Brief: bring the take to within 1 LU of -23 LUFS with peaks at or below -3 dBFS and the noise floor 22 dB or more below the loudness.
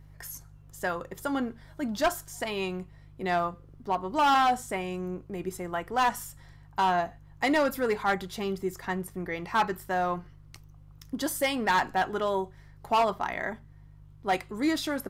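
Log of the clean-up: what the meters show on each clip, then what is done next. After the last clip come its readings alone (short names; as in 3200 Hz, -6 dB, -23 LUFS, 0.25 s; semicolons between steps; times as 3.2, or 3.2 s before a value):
clipped 1.1%; flat tops at -19.0 dBFS; hum 50 Hz; harmonics up to 150 Hz; hum level -50 dBFS; loudness -29.5 LUFS; peak -19.0 dBFS; loudness target -23.0 LUFS
-> clip repair -19 dBFS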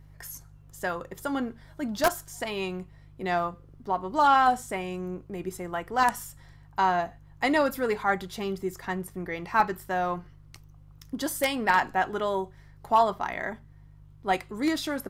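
clipped 0.0%; hum 50 Hz; harmonics up to 150 Hz; hum level -50 dBFS
-> de-hum 50 Hz, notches 3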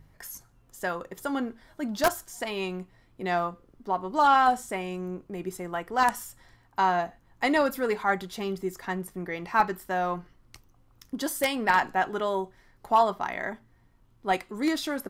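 hum none; loudness -28.0 LUFS; peak -10.0 dBFS; loudness target -23.0 LUFS
-> gain +5 dB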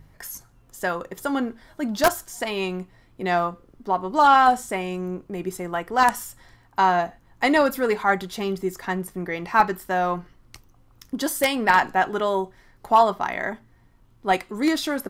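loudness -23.0 LUFS; peak -5.0 dBFS; noise floor -56 dBFS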